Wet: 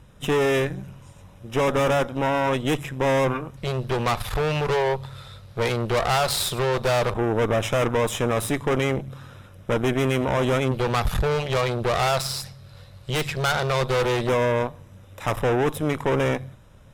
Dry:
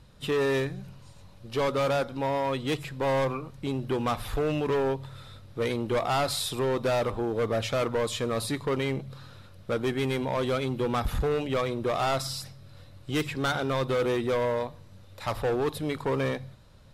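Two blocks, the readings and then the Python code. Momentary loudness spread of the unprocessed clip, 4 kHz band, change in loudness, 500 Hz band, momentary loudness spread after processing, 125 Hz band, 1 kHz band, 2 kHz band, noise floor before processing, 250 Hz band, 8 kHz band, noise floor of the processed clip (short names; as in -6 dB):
9 LU, +5.5 dB, +5.0 dB, +4.5 dB, 9 LU, +7.0 dB, +5.5 dB, +7.0 dB, -51 dBFS, +4.0 dB, +7.0 dB, -48 dBFS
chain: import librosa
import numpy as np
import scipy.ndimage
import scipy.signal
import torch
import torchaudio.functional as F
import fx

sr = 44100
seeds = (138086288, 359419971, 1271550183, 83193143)

y = fx.cheby_harmonics(x, sr, harmonics=(4,), levels_db=(-11,), full_scale_db=-19.5)
y = fx.filter_lfo_notch(y, sr, shape='square', hz=0.14, low_hz=280.0, high_hz=4400.0, q=1.8)
y = y * librosa.db_to_amplitude(4.5)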